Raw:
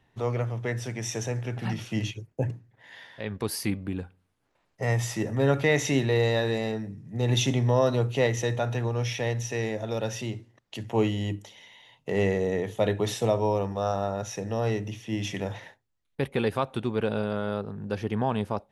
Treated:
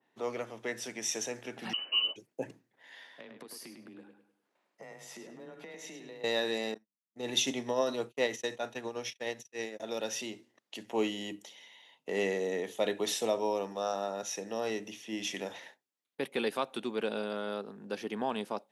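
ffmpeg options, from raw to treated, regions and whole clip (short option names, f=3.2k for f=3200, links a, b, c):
-filter_complex "[0:a]asettb=1/sr,asplit=3[a][b][c];[a]atrim=end=1.734[d];[b]atrim=start=1.73:end=2.16,asetpts=PTS-STARTPTS,afade=t=in:d=0.004:c=qsin,afade=t=out:st=0.426:d=0.004:c=qsin,acrusher=bits=8:mode=log:mix=0:aa=0.000001,lowpass=f=2.6k:t=q:w=0.5098,lowpass=f=2.6k:t=q:w=0.6013,lowpass=f=2.6k:t=q:w=0.9,lowpass=f=2.6k:t=q:w=2.563,afreqshift=-3100[e];[c]atrim=start=2.156[f];[d][e]acrossfade=d=0.004:c1=hsin:c2=qsin[g];[g][f]acrossfade=d=0.004:c1=qsin:c2=hsin,asettb=1/sr,asplit=3[h][i][j];[h]atrim=end=3.104[k];[i]atrim=start=3.1:end=6.24,asetpts=PTS-STARTPTS,afade=t=in:d=0.004:c=qsin,afade=t=out:st=3.136:d=0.004:c=qsin,acompressor=threshold=-37dB:ratio=16:attack=3.2:release=140:knee=1:detection=peak,afreqshift=22,asplit=2[l][m];[m]adelay=102,lowpass=f=4.9k:p=1,volume=-6dB,asplit=2[n][o];[o]adelay=102,lowpass=f=4.9k:p=1,volume=0.37,asplit=2[p][q];[q]adelay=102,lowpass=f=4.9k:p=1,volume=0.37,asplit=2[r][s];[s]adelay=102,lowpass=f=4.9k:p=1,volume=0.37[t];[l][n][p][r][t]amix=inputs=5:normalize=0,atrim=end_sample=138474[u];[j]atrim=start=6.236[v];[k][u]acrossfade=d=0.004:c1=hsin:c2=qsin[w];[w][v]acrossfade=d=0.004:c1=qsin:c2=hsin,asettb=1/sr,asplit=3[x][y][z];[x]atrim=end=6.744[aa];[y]atrim=start=6.74:end=9.8,asetpts=PTS-STARTPTS,afade=t=in:d=0.004:c=qsin,afade=t=out:st=3.056:d=0.004:c=qsin,agate=range=-52dB:threshold=-30dB:ratio=16:release=100:detection=peak,tremolo=f=9.4:d=0.35[ab];[z]atrim=start=9.796[ac];[aa][ab]acrossfade=d=0.004:c1=hsin:c2=qsin[ad];[ad][ac]acrossfade=d=0.004:c1=qsin:c2=hsin,highpass=f=220:w=0.5412,highpass=f=220:w=1.3066,adynamicequalizer=threshold=0.00562:dfrequency=2300:dqfactor=0.7:tfrequency=2300:tqfactor=0.7:attack=5:release=100:ratio=0.375:range=3.5:mode=boostabove:tftype=highshelf,volume=-5.5dB"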